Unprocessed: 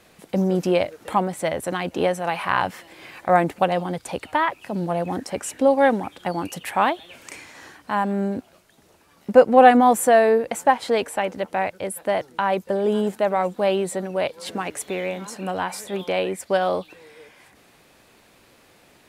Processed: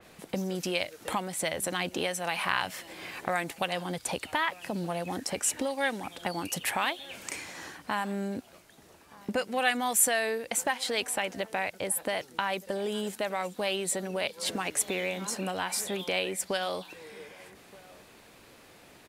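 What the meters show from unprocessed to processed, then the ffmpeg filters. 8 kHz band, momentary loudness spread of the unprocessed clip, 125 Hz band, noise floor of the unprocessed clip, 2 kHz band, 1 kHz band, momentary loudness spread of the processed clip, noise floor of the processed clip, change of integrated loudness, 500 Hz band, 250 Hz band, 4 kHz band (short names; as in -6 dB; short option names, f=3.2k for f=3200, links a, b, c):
+4.0 dB, 13 LU, -9.5 dB, -56 dBFS, -4.0 dB, -12.5 dB, 9 LU, -55 dBFS, -9.0 dB, -13.0 dB, -11.5 dB, +1.5 dB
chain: -filter_complex "[0:a]acrossover=split=1800[a][b];[a]acompressor=threshold=-31dB:ratio=6[c];[c][b]amix=inputs=2:normalize=0,asplit=2[d][e];[e]adelay=1224,volume=-21dB,highshelf=f=4k:g=-27.6[f];[d][f]amix=inputs=2:normalize=0,adynamicequalizer=threshold=0.00562:dfrequency=3500:dqfactor=0.7:tfrequency=3500:tqfactor=0.7:attack=5:release=100:ratio=0.375:range=2:mode=boostabove:tftype=highshelf"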